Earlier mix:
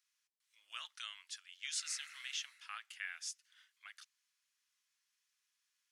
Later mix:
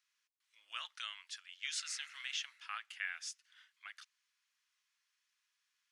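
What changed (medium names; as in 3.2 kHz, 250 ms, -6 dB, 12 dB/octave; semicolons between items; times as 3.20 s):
speech +4.5 dB; master: add treble shelf 6.2 kHz -11.5 dB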